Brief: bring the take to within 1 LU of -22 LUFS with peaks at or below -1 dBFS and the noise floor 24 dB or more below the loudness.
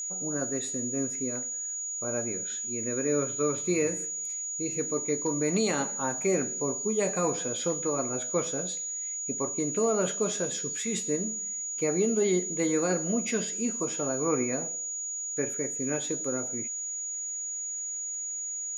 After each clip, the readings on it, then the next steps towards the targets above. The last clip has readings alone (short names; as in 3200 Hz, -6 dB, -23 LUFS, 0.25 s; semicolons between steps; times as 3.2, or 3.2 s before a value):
ticks 56/s; steady tone 6800 Hz; tone level -32 dBFS; loudness -29.0 LUFS; peak -16.0 dBFS; loudness target -22.0 LUFS
-> de-click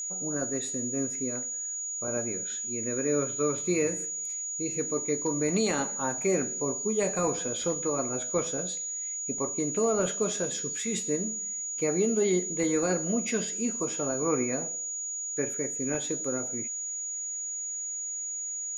ticks 0/s; steady tone 6800 Hz; tone level -32 dBFS
-> notch 6800 Hz, Q 30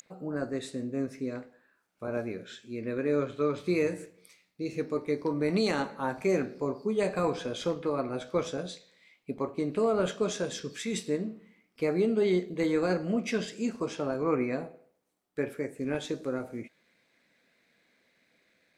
steady tone none; loudness -31.5 LUFS; peak -17.0 dBFS; loudness target -22.0 LUFS
-> gain +9.5 dB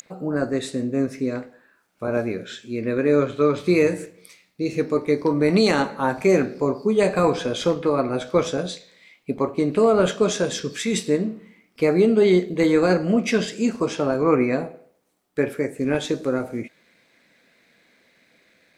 loudness -22.0 LUFS; peak -7.5 dBFS; noise floor -63 dBFS